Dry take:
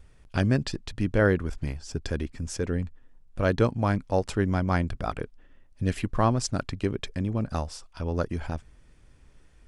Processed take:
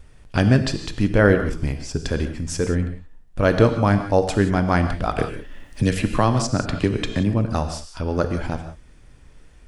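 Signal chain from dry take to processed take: gated-style reverb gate 200 ms flat, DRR 7 dB; 5.18–7.34 s: three bands compressed up and down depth 70%; trim +6.5 dB

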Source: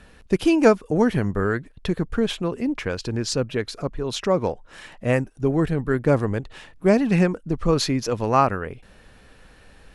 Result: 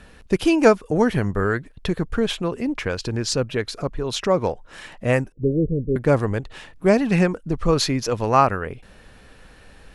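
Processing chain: 5.32–5.96 s: steep low-pass 570 Hz 96 dB/octave; dynamic bell 240 Hz, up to -3 dB, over -30 dBFS, Q 0.82; trim +2.5 dB

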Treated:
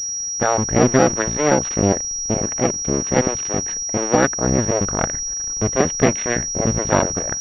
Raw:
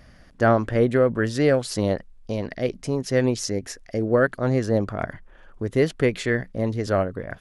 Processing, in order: cycle switcher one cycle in 2, muted; level rider; class-D stage that switches slowly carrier 5.7 kHz

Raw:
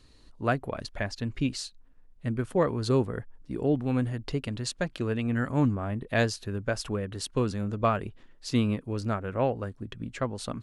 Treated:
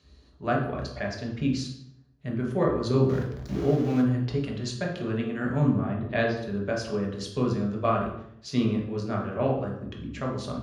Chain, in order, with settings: 3.09–4.02 s: jump at every zero crossing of -32.5 dBFS; 5.69–6.36 s: low-pass 8.6 kHz -> 3.6 kHz 24 dB/octave; reverberation RT60 0.70 s, pre-delay 3 ms, DRR -1.5 dB; trim -6.5 dB

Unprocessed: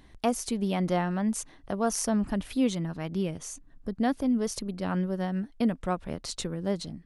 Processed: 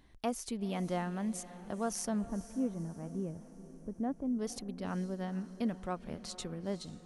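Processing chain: 2.25–4.39 s: Bessel low-pass 760 Hz, order 2; echo that smears into a reverb 481 ms, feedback 51%, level -15 dB; trim -8 dB

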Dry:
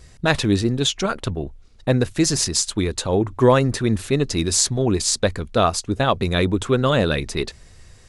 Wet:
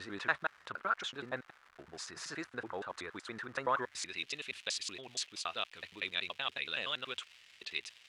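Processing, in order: slices played last to first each 94 ms, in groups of 7; in parallel at -1 dB: compression, threshold -28 dBFS, peak gain reduction 17 dB; on the sum: crackle 300 per s -28 dBFS; band-pass sweep 1.4 kHz -> 2.8 kHz, 3.69–4.25 s; trim -7 dB

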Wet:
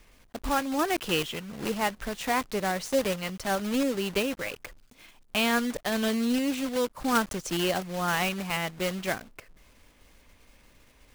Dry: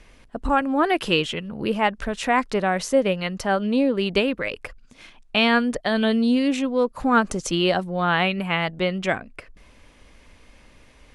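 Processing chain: block-companded coder 3-bit; trim -7 dB

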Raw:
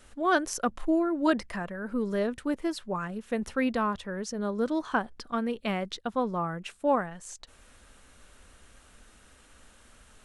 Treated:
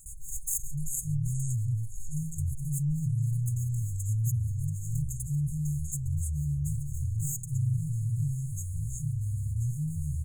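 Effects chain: comb filter that takes the minimum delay 3.6 ms; bass shelf 190 Hz -7.5 dB; echo from a far wall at 230 m, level -20 dB; gate with hold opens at -49 dBFS; ever faster or slower copies 193 ms, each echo -6 st, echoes 3; FFT band-reject 160–6400 Hz; level flattener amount 50%; trim +6 dB

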